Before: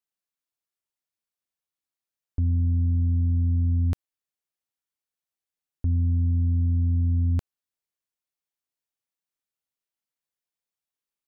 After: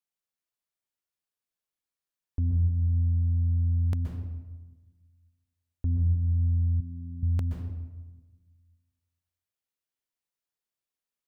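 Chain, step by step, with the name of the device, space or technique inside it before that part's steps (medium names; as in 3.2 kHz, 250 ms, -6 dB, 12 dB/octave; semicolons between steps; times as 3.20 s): bathroom (reverberation RT60 1.2 s, pre-delay 118 ms, DRR 2.5 dB); 6.80–7.23 s: peaking EQ 85 Hz -14 dB 0.77 oct; trim -3 dB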